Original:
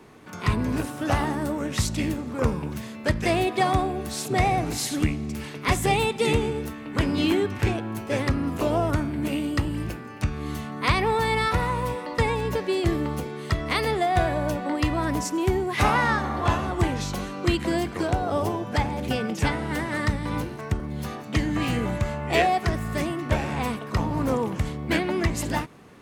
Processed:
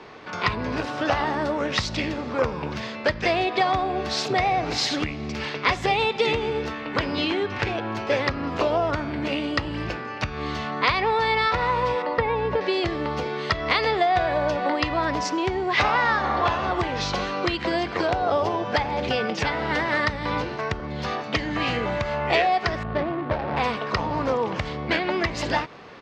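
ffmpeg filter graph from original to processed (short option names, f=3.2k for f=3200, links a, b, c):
-filter_complex "[0:a]asettb=1/sr,asplit=3[a][b][c];[a]atrim=end=12.024[d];[b]atrim=start=12.02:end=12.61,asetpts=PTS-STARTPTS,afade=t=in:d=0.004:c=qsin,afade=t=out:st=0.586:d=0.004:c=qsin,acrossover=split=4400[e][f];[f]acompressor=threshold=-54dB:ratio=4:attack=1:release=60[g];[e][g]amix=inputs=2:normalize=0,highshelf=f=2.5k:g=-11.5[h];[c]atrim=start=12.606[i];[d][h]acrossfade=d=0.004:c1=hsin:c2=qsin[j];[j][i]acrossfade=d=0.004:c1=qsin:c2=hsin,asettb=1/sr,asplit=3[k][l][m];[k]atrim=end=22.834[n];[l]atrim=start=22.83:end=23.57,asetpts=PTS-STARTPTS,afade=t=in:d=0.004:c=qsin,afade=t=out:st=0.736:d=0.004:c=qsin,lowpass=2.4k,adynamicsmooth=sensitivity=1.5:basefreq=580[o];[m]atrim=start=23.566[p];[n][o]acrossfade=d=0.004:c1=hsin:c2=qsin[q];[q][p]acrossfade=d=0.004:c1=qsin:c2=hsin,highshelf=f=8.1k:g=-6,acompressor=threshold=-26dB:ratio=6,firequalizer=gain_entry='entry(250,0);entry(500,9);entry(4900,11);entry(9600,-17)':delay=0.05:min_phase=1"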